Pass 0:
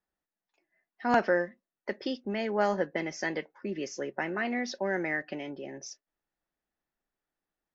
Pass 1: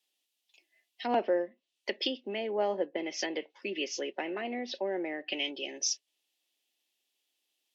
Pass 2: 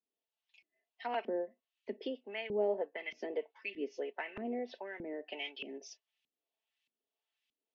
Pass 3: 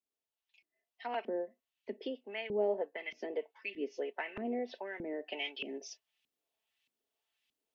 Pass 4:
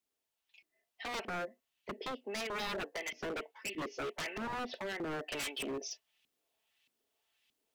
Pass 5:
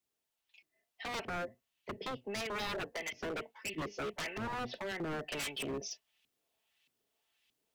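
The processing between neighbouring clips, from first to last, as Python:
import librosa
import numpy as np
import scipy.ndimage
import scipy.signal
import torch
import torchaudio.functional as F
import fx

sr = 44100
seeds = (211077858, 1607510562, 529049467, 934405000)

y1 = fx.env_lowpass_down(x, sr, base_hz=960.0, full_db=-27.5)
y1 = scipy.signal.sosfilt(scipy.signal.butter(4, 270.0, 'highpass', fs=sr, output='sos'), y1)
y1 = fx.high_shelf_res(y1, sr, hz=2100.0, db=12.5, q=3.0)
y2 = y1 + 0.57 * np.pad(y1, (int(4.5 * sr / 1000.0), 0))[:len(y1)]
y2 = fx.filter_lfo_bandpass(y2, sr, shape='saw_up', hz=1.6, low_hz=210.0, high_hz=2600.0, q=1.4)
y3 = fx.rider(y2, sr, range_db=4, speed_s=2.0)
y4 = 10.0 ** (-38.5 / 20.0) * (np.abs((y3 / 10.0 ** (-38.5 / 20.0) + 3.0) % 4.0 - 2.0) - 1.0)
y4 = y4 * librosa.db_to_amplitude(5.5)
y5 = fx.octave_divider(y4, sr, octaves=1, level_db=-5.0)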